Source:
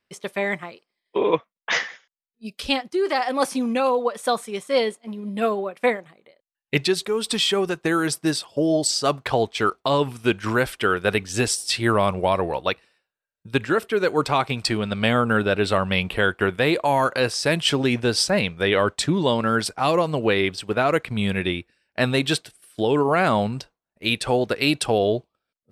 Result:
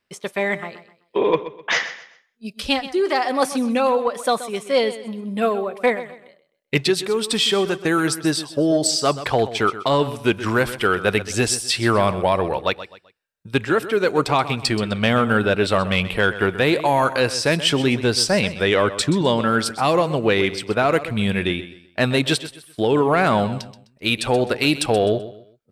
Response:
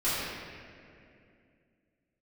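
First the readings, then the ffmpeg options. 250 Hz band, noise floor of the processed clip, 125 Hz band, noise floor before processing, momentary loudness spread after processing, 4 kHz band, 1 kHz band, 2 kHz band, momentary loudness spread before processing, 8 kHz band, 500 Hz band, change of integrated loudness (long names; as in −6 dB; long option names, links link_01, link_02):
+2.5 dB, −61 dBFS, +2.5 dB, below −85 dBFS, 8 LU, +2.0 dB, +2.0 dB, +2.0 dB, 7 LU, +2.5 dB, +2.0 dB, +2.0 dB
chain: -filter_complex "[0:a]asoftclip=type=tanh:threshold=-7dB,asplit=2[link_01][link_02];[link_02]aecho=0:1:128|256|384:0.2|0.0638|0.0204[link_03];[link_01][link_03]amix=inputs=2:normalize=0,volume=2.5dB"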